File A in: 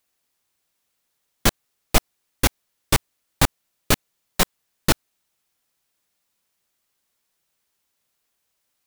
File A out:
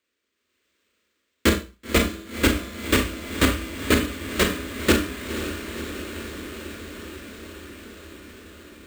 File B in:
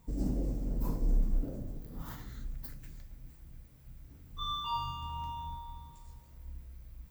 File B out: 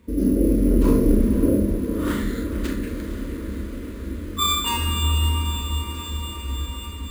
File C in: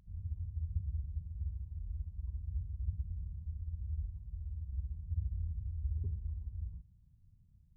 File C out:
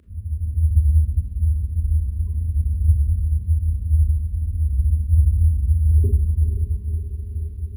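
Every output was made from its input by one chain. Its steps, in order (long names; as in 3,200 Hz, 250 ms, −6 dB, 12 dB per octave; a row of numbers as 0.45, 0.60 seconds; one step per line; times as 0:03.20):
stylus tracing distortion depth 0.034 ms
high-pass filter 59 Hz 24 dB per octave
mains-hum notches 60/120/180/240/300 Hz
automatic gain control gain up to 8 dB
phaser with its sweep stopped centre 330 Hz, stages 4
soft clipping −12.5 dBFS
high-frequency loss of the air 250 metres
feedback delay with all-pass diffusion 514 ms, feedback 76%, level −10 dB
four-comb reverb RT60 0.32 s, combs from 27 ms, DRR 4.5 dB
bad sample-rate conversion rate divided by 4×, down none, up hold
normalise the peak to −6 dBFS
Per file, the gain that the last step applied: +6.5, +17.0, +18.0 decibels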